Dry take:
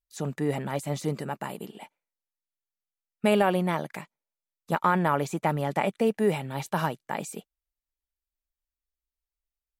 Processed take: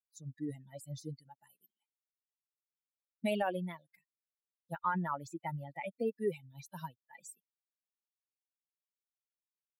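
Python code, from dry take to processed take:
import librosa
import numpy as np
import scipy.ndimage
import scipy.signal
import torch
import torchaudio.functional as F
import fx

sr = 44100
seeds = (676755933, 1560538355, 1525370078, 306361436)

y = fx.bin_expand(x, sr, power=3.0)
y = y * librosa.db_to_amplitude(-6.0)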